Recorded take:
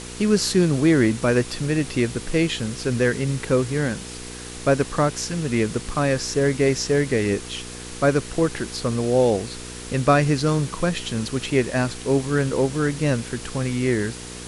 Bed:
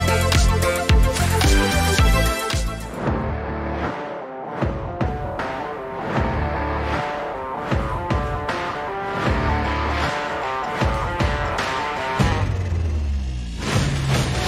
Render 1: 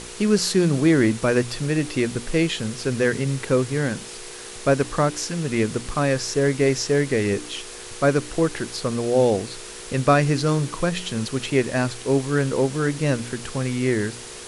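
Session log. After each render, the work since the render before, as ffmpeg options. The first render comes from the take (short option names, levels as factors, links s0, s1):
-af "bandreject=f=60:t=h:w=4,bandreject=f=120:t=h:w=4,bandreject=f=180:t=h:w=4,bandreject=f=240:t=h:w=4,bandreject=f=300:t=h:w=4"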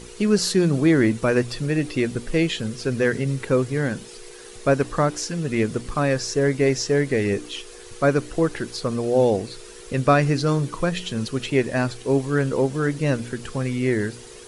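-af "afftdn=nr=9:nf=-38"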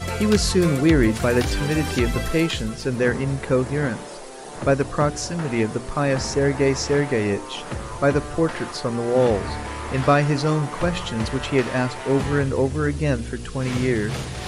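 -filter_complex "[1:a]volume=0.355[s0];[0:a][s0]amix=inputs=2:normalize=0"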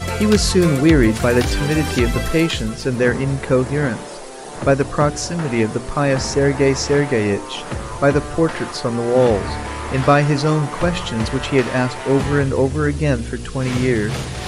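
-af "volume=1.58,alimiter=limit=0.794:level=0:latency=1"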